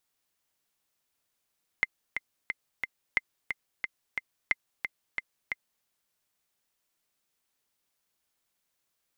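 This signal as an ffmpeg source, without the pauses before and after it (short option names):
-f lavfi -i "aevalsrc='pow(10,(-10.5-7*gte(mod(t,4*60/179),60/179))/20)*sin(2*PI*2080*mod(t,60/179))*exp(-6.91*mod(t,60/179)/0.03)':d=4.02:s=44100"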